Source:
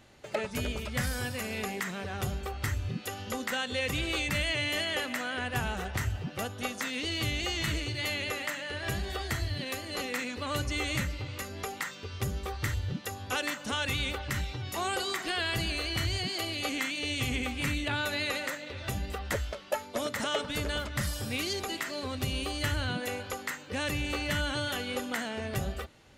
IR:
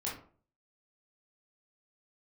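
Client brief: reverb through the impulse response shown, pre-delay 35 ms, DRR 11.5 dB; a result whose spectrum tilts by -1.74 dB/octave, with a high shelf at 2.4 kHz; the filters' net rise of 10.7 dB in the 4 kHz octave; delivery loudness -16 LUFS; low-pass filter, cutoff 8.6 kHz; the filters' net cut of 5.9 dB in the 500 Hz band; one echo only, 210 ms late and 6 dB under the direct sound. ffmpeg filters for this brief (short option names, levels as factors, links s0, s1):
-filter_complex "[0:a]lowpass=8600,equalizer=f=500:t=o:g=-8,highshelf=f=2400:g=7,equalizer=f=4000:t=o:g=8,aecho=1:1:210:0.501,asplit=2[s0][s1];[1:a]atrim=start_sample=2205,adelay=35[s2];[s1][s2]afir=irnorm=-1:irlink=0,volume=0.2[s3];[s0][s3]amix=inputs=2:normalize=0,volume=2.82"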